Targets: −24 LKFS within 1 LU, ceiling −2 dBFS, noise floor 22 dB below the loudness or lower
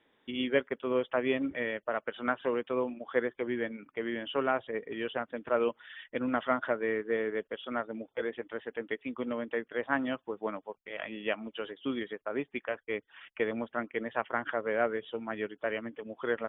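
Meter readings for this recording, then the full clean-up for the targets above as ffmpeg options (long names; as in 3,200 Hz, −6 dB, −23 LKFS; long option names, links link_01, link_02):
integrated loudness −34.0 LKFS; sample peak −13.5 dBFS; target loudness −24.0 LKFS
→ -af "volume=10dB"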